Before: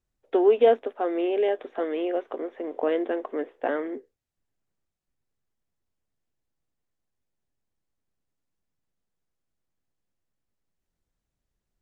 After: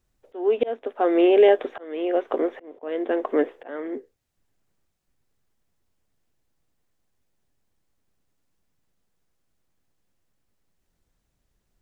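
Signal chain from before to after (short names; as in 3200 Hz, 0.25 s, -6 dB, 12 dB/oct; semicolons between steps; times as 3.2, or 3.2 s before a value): auto swell 0.599 s; gain +9 dB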